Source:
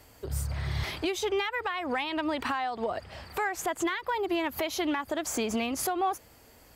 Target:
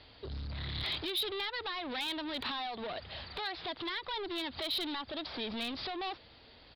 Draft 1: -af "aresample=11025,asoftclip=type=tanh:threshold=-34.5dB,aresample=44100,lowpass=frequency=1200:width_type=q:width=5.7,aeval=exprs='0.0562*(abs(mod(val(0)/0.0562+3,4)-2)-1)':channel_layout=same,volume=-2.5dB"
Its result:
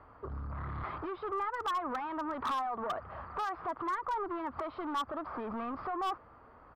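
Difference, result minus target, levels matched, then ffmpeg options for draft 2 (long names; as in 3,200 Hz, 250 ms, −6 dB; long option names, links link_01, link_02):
4,000 Hz band −15.5 dB
-af "aresample=11025,asoftclip=type=tanh:threshold=-34.5dB,aresample=44100,lowpass=frequency=3800:width_type=q:width=5.7,aeval=exprs='0.0562*(abs(mod(val(0)/0.0562+3,4)-2)-1)':channel_layout=same,volume=-2.5dB"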